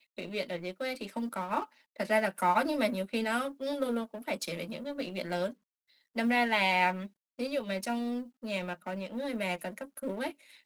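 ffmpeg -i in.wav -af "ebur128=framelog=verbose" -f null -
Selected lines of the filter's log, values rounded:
Integrated loudness:
  I:         -32.7 LUFS
  Threshold: -42.9 LUFS
Loudness range:
  LRA:         4.4 LU
  Threshold: -52.3 LUFS
  LRA low:   -35.6 LUFS
  LRA high:  -31.2 LUFS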